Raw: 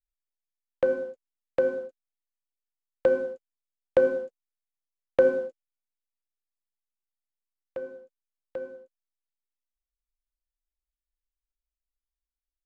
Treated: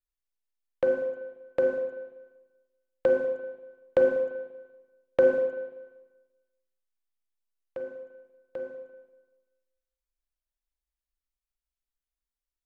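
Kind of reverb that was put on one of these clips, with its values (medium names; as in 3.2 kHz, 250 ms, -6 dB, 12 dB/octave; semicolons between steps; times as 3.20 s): spring tank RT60 1.2 s, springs 38/48 ms, chirp 35 ms, DRR 6 dB; trim -2 dB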